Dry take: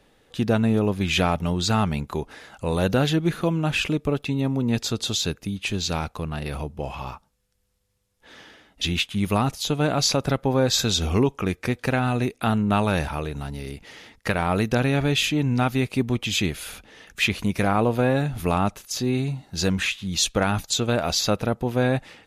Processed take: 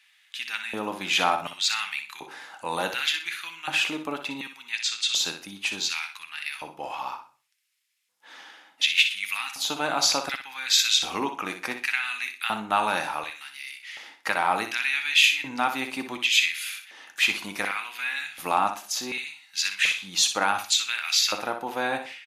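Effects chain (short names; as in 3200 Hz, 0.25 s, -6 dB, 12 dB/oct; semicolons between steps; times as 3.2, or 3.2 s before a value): band shelf 510 Hz -14 dB 1 oct; on a send at -11 dB: reverb RT60 0.45 s, pre-delay 6 ms; on the sum: LFO high-pass square 0.68 Hz 550–2200 Hz; 4.75–5.15 LPF 8700 Hz 24 dB/oct; feedback echo 61 ms, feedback 26%, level -9 dB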